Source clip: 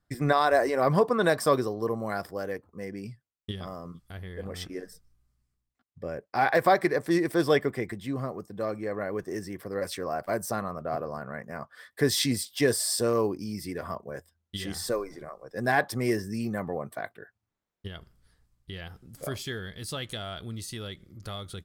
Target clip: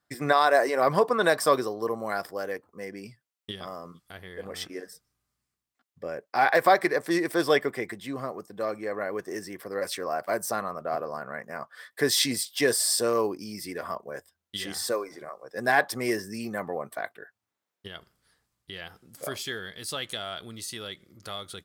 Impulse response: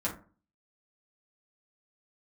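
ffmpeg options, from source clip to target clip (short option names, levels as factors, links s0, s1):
-af "highpass=f=480:p=1,volume=1.5"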